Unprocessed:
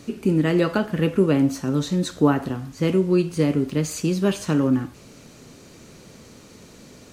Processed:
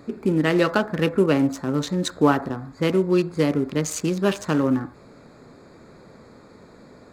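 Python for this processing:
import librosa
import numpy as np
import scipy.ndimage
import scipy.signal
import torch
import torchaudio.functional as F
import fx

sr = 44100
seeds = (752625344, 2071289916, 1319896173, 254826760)

y = fx.wiener(x, sr, points=15)
y = fx.low_shelf(y, sr, hz=430.0, db=-10.0)
y = y * 10.0 ** (6.0 / 20.0)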